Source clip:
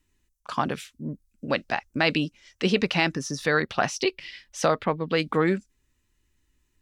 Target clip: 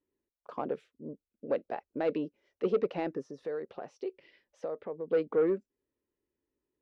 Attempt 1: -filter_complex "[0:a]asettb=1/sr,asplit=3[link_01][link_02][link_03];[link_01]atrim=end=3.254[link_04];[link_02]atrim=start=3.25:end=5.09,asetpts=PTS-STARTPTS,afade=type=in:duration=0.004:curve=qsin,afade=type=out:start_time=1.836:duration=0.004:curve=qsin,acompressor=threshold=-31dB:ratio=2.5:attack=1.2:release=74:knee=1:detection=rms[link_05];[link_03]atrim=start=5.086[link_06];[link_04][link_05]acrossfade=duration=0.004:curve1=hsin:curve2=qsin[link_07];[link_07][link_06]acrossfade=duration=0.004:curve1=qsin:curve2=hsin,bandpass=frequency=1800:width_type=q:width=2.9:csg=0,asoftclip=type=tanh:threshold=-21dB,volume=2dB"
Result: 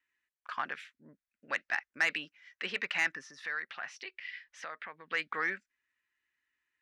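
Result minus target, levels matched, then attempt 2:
2,000 Hz band +19.0 dB
-filter_complex "[0:a]asettb=1/sr,asplit=3[link_01][link_02][link_03];[link_01]atrim=end=3.254[link_04];[link_02]atrim=start=3.25:end=5.09,asetpts=PTS-STARTPTS,afade=type=in:duration=0.004:curve=qsin,afade=type=out:start_time=1.836:duration=0.004:curve=qsin,acompressor=threshold=-31dB:ratio=2.5:attack=1.2:release=74:knee=1:detection=rms[link_05];[link_03]atrim=start=5.086[link_06];[link_04][link_05]acrossfade=duration=0.004:curve1=hsin:curve2=qsin[link_07];[link_07][link_06]acrossfade=duration=0.004:curve1=qsin:curve2=hsin,bandpass=frequency=460:width_type=q:width=2.9:csg=0,asoftclip=type=tanh:threshold=-21dB,volume=2dB"

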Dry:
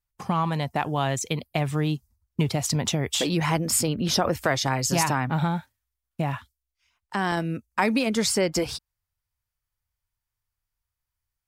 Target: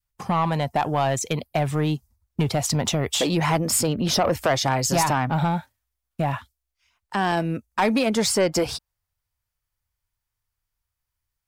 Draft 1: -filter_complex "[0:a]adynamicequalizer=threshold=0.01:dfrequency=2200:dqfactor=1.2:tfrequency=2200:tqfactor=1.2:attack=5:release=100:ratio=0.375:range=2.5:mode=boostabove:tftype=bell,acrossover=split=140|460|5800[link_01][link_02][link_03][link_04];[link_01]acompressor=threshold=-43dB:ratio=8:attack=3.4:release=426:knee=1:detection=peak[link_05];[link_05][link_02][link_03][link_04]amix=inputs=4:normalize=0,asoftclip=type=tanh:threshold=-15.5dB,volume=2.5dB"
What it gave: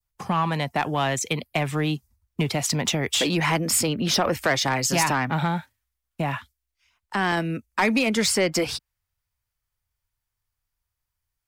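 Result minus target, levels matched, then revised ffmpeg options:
downward compressor: peak gain reduction +15 dB; 2,000 Hz band +4.5 dB
-af "adynamicequalizer=threshold=0.01:dfrequency=670:dqfactor=1.2:tfrequency=670:tqfactor=1.2:attack=5:release=100:ratio=0.375:range=2.5:mode=boostabove:tftype=bell,asoftclip=type=tanh:threshold=-15.5dB,volume=2.5dB"

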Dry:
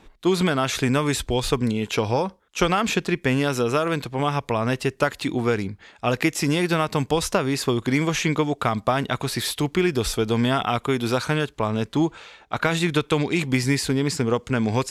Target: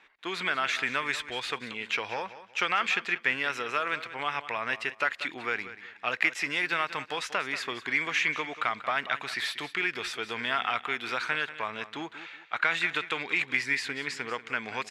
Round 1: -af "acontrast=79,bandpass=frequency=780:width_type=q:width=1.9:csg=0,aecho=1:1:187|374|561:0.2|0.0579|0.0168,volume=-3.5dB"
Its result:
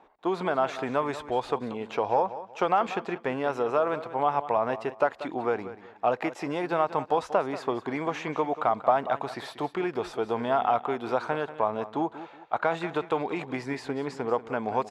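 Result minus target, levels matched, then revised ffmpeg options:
2,000 Hz band −11.0 dB
-af "acontrast=79,bandpass=frequency=2000:width_type=q:width=1.9:csg=0,aecho=1:1:187|374|561:0.2|0.0579|0.0168,volume=-3.5dB"

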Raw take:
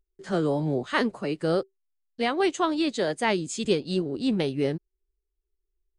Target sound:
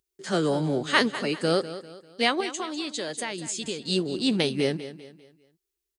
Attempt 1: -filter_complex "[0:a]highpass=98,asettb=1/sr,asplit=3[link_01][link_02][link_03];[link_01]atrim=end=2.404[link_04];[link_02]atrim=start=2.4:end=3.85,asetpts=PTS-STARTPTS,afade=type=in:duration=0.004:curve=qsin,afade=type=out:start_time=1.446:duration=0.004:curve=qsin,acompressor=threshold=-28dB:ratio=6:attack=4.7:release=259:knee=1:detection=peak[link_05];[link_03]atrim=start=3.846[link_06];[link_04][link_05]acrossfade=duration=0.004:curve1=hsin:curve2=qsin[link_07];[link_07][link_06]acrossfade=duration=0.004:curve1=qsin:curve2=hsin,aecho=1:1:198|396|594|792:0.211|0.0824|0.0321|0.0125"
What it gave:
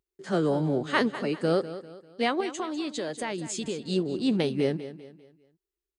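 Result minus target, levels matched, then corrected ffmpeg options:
4,000 Hz band −6.0 dB
-filter_complex "[0:a]highpass=98,highshelf=frequency=2100:gain=11.5,asettb=1/sr,asplit=3[link_01][link_02][link_03];[link_01]atrim=end=2.404[link_04];[link_02]atrim=start=2.4:end=3.85,asetpts=PTS-STARTPTS,afade=type=in:duration=0.004:curve=qsin,afade=type=out:start_time=1.446:duration=0.004:curve=qsin,acompressor=threshold=-28dB:ratio=6:attack=4.7:release=259:knee=1:detection=peak[link_05];[link_03]atrim=start=3.846[link_06];[link_04][link_05]acrossfade=duration=0.004:curve1=hsin:curve2=qsin[link_07];[link_07][link_06]acrossfade=duration=0.004:curve1=qsin:curve2=hsin,aecho=1:1:198|396|594|792:0.211|0.0824|0.0321|0.0125"

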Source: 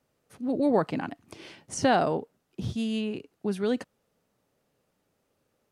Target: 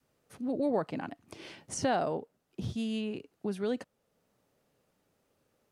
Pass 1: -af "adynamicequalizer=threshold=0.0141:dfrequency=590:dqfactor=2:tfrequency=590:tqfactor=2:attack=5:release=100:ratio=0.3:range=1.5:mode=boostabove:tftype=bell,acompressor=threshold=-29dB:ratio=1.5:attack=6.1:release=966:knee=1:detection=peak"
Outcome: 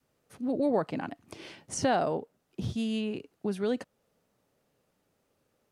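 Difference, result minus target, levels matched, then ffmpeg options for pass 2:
downward compressor: peak gain reduction −2.5 dB
-af "adynamicequalizer=threshold=0.0141:dfrequency=590:dqfactor=2:tfrequency=590:tqfactor=2:attack=5:release=100:ratio=0.3:range=1.5:mode=boostabove:tftype=bell,acompressor=threshold=-37dB:ratio=1.5:attack=6.1:release=966:knee=1:detection=peak"

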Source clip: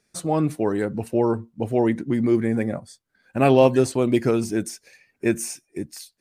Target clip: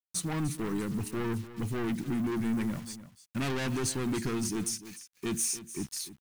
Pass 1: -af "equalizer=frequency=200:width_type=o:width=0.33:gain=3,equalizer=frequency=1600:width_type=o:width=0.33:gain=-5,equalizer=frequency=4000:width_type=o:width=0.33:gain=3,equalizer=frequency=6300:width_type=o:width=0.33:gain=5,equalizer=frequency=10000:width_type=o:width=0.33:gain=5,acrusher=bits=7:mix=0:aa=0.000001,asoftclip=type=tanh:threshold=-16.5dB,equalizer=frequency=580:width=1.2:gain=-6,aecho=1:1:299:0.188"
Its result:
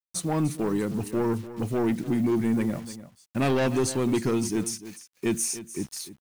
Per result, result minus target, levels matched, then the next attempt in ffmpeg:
500 Hz band +4.0 dB; soft clipping: distortion −5 dB
-af "equalizer=frequency=200:width_type=o:width=0.33:gain=3,equalizer=frequency=1600:width_type=o:width=0.33:gain=-5,equalizer=frequency=4000:width_type=o:width=0.33:gain=3,equalizer=frequency=6300:width_type=o:width=0.33:gain=5,equalizer=frequency=10000:width_type=o:width=0.33:gain=5,acrusher=bits=7:mix=0:aa=0.000001,asoftclip=type=tanh:threshold=-16.5dB,equalizer=frequency=580:width=1.2:gain=-15,aecho=1:1:299:0.188"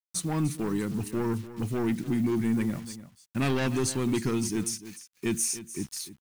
soft clipping: distortion −5 dB
-af "equalizer=frequency=200:width_type=o:width=0.33:gain=3,equalizer=frequency=1600:width_type=o:width=0.33:gain=-5,equalizer=frequency=4000:width_type=o:width=0.33:gain=3,equalizer=frequency=6300:width_type=o:width=0.33:gain=5,equalizer=frequency=10000:width_type=o:width=0.33:gain=5,acrusher=bits=7:mix=0:aa=0.000001,asoftclip=type=tanh:threshold=-24dB,equalizer=frequency=580:width=1.2:gain=-15,aecho=1:1:299:0.188"

